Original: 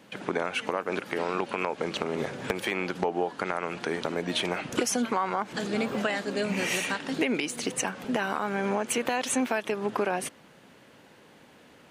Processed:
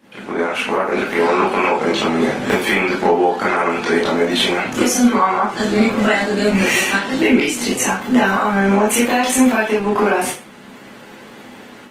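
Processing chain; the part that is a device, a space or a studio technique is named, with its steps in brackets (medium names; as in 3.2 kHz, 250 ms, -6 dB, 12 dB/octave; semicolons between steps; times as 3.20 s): far-field microphone of a smart speaker (reverberation RT60 0.35 s, pre-delay 19 ms, DRR -7.5 dB; high-pass 120 Hz 12 dB/octave; level rider gain up to 9.5 dB; trim -1 dB; Opus 20 kbps 48 kHz)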